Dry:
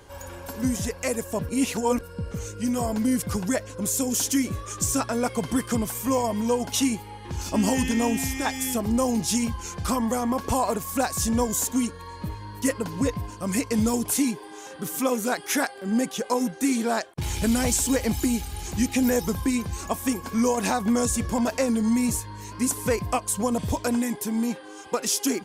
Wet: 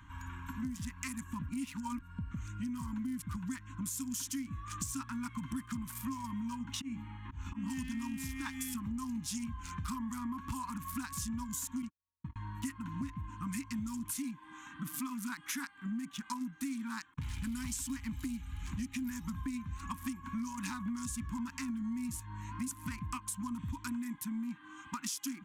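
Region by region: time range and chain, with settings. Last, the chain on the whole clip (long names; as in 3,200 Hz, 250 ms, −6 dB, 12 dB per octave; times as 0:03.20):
0:06.59–0:07.70: low-pass filter 4,000 Hz 6 dB per octave + hum removal 71.64 Hz, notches 7 + volume swells 194 ms
0:11.82–0:12.36: noise gate −29 dBFS, range −56 dB + high-frequency loss of the air 58 metres
whole clip: adaptive Wiener filter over 9 samples; elliptic band-stop filter 280–1,000 Hz, stop band 40 dB; downward compressor 6 to 1, threshold −35 dBFS; level −1.5 dB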